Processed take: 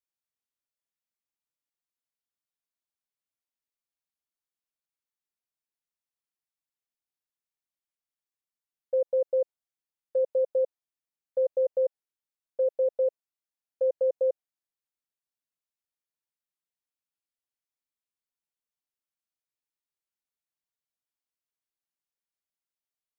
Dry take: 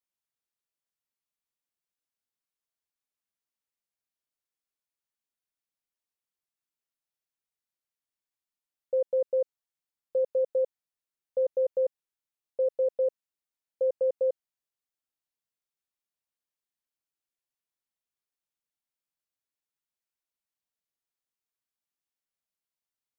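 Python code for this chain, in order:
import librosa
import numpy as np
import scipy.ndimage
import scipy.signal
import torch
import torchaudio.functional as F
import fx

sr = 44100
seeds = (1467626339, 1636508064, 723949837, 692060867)

y = fx.dynamic_eq(x, sr, hz=620.0, q=1.1, threshold_db=-39.0, ratio=4.0, max_db=7)
y = y * librosa.db_to_amplitude(-5.0)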